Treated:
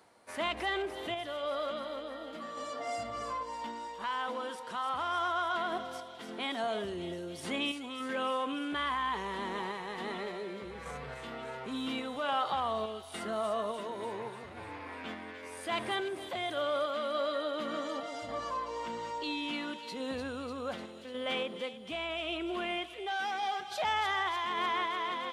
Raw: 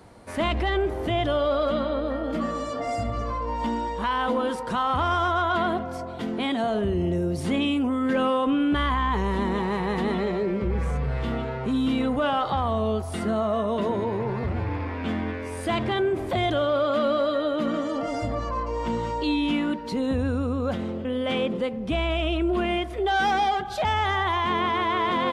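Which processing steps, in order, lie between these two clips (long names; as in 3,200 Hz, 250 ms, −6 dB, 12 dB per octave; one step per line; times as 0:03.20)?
high-pass filter 810 Hz 6 dB per octave
reversed playback
upward compression, threshold −45 dBFS
reversed playback
sample-and-hold tremolo
on a send: delay with a high-pass on its return 297 ms, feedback 68%, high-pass 3,600 Hz, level −6 dB
on the sum: level −3 dB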